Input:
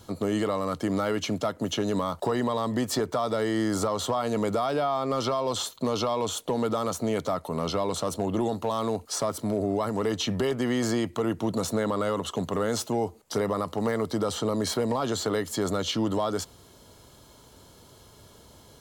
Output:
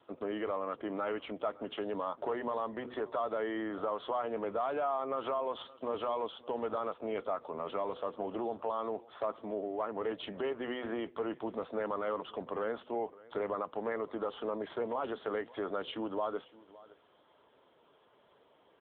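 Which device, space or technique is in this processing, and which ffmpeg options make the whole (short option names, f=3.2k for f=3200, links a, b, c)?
satellite phone: -af "highpass=370,lowpass=3.2k,aecho=1:1:564:0.0944,bandreject=f=123.9:t=h:w=4,bandreject=f=247.8:t=h:w=4,bandreject=f=371.7:t=h:w=4,bandreject=f=495.6:t=h:w=4,volume=-5dB" -ar 8000 -c:a libopencore_amrnb -b:a 6700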